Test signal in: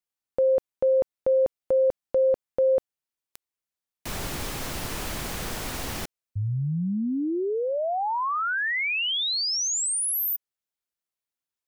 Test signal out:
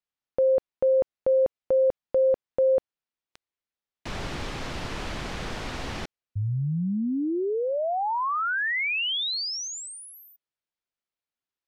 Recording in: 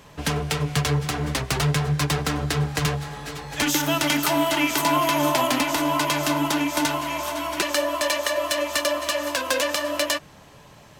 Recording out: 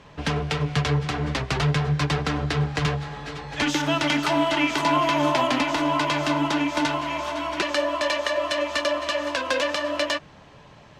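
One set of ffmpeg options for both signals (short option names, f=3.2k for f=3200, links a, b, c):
-af "lowpass=4.4k"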